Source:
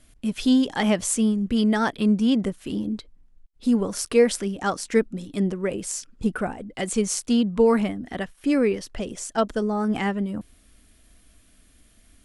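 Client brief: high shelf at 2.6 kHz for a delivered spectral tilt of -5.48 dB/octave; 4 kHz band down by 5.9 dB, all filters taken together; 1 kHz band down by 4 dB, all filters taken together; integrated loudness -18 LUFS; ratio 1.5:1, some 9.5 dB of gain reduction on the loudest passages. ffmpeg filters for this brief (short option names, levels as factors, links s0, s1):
-af "equalizer=f=1000:t=o:g=-4.5,highshelf=f=2600:g=-5,equalizer=f=4000:t=o:g=-3.5,acompressor=threshold=0.00891:ratio=1.5,volume=5.31"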